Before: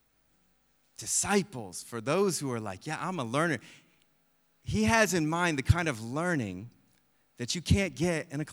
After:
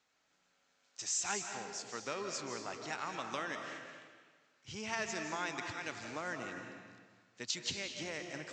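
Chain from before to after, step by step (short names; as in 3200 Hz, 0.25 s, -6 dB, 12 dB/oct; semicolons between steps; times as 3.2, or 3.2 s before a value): steep low-pass 7600 Hz 72 dB/oct; compressor, threshold -32 dBFS, peak gain reduction 15.5 dB; HPF 810 Hz 6 dB/oct; digital reverb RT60 1.6 s, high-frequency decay 0.85×, pre-delay 0.12 s, DRR 4 dB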